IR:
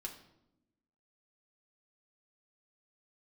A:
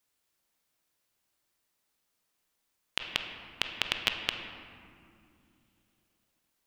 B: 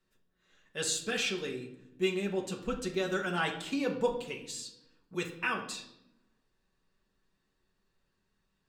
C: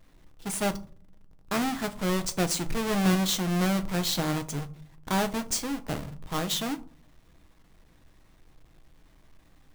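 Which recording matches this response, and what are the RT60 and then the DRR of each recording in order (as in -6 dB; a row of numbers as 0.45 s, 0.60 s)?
B; 2.7 s, 0.85 s, 0.45 s; 4.0 dB, 0.0 dB, 8.5 dB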